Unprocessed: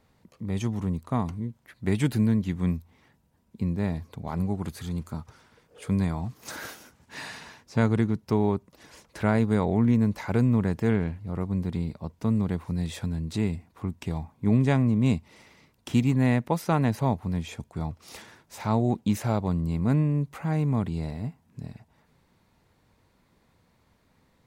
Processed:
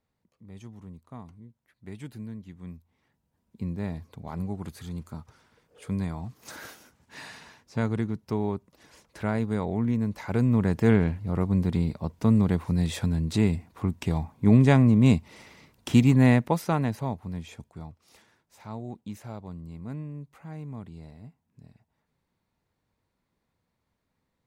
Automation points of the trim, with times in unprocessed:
2.62 s -16 dB
3.65 s -4.5 dB
10.08 s -4.5 dB
10.91 s +4 dB
16.29 s +4 dB
17.09 s -6 dB
17.62 s -6 dB
18.05 s -13.5 dB

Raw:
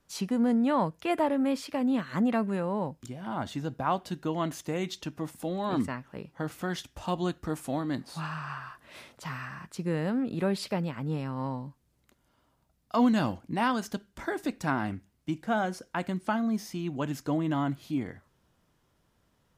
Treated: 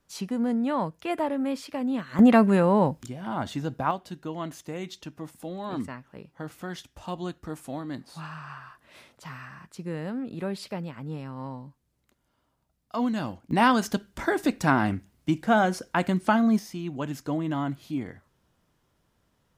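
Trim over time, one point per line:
-1 dB
from 2.19 s +10 dB
from 3.03 s +3 dB
from 3.91 s -3.5 dB
from 13.51 s +7 dB
from 16.59 s 0 dB

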